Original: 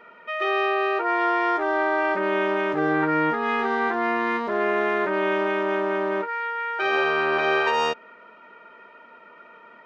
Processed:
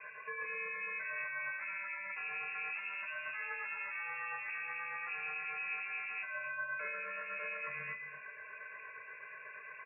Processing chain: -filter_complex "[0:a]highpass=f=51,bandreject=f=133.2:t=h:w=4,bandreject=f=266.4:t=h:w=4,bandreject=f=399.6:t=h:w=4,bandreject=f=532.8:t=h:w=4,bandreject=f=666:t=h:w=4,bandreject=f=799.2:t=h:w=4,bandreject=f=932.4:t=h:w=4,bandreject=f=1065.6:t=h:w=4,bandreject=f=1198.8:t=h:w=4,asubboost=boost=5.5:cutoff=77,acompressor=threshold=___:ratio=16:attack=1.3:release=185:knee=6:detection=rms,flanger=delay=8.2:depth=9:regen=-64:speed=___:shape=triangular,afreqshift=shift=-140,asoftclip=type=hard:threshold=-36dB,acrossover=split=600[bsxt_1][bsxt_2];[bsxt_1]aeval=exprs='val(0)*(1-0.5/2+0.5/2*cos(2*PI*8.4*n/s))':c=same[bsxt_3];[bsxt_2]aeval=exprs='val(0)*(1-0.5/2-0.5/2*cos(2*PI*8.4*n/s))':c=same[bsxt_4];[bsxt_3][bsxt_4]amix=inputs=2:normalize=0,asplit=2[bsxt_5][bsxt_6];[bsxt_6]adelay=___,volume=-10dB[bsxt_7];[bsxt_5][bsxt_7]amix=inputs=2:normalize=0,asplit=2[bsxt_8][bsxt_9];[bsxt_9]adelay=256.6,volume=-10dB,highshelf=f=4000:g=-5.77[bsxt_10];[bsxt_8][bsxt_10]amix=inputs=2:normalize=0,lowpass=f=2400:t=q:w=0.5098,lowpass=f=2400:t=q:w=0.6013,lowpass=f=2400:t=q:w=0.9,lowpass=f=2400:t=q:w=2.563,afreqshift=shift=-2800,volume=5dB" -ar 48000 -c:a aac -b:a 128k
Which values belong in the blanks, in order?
-34dB, 0.42, 20